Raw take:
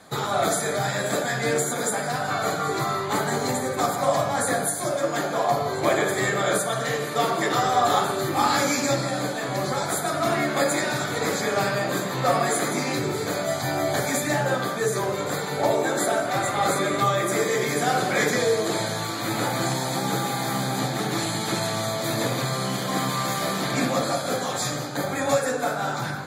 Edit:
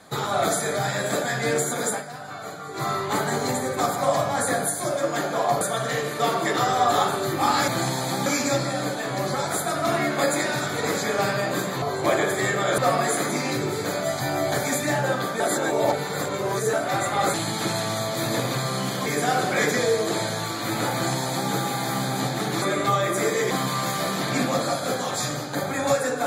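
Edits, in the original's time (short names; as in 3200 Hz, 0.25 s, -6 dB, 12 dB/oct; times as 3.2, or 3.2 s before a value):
1.92–2.86 dip -10.5 dB, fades 0.13 s
5.61–6.57 move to 12.2
14.82–16.15 reverse
16.76–17.65 swap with 21.21–22.93
19.52–20.1 copy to 8.64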